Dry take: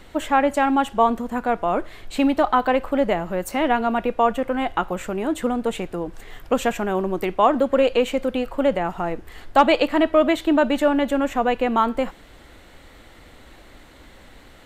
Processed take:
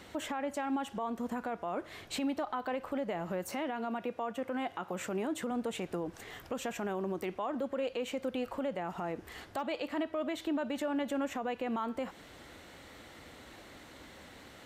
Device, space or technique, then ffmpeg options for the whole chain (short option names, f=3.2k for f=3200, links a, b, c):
broadcast voice chain: -filter_complex "[0:a]asettb=1/sr,asplit=3[a][b][c];[a]atrim=end=3.494[d];[b]atrim=start=3.49:end=5.51,asetpts=PTS-STARTPTS,afade=t=in:d=0.004:c=qsin,afade=t=out:st=2.016:d=0.004:c=qsin,highpass=f=94:w=0.5412,highpass=f=94:w=1.3066[e];[c]atrim=start=5.506[f];[d][e]acrossfade=d=0.004:c1=hsin:c2=qsin[g];[g][f]acrossfade=d=0.004:c1=qsin:c2=hsin,highpass=90,deesser=0.55,acompressor=threshold=-26dB:ratio=5,equalizer=f=5.7k:t=o:w=0.47:g=4,alimiter=limit=-23dB:level=0:latency=1:release=37,volume=-3.5dB"